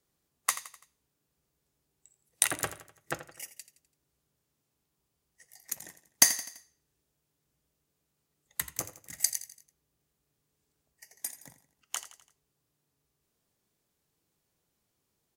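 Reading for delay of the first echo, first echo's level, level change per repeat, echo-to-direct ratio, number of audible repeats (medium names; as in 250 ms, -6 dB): 84 ms, -14.0 dB, -6.5 dB, -13.0 dB, 4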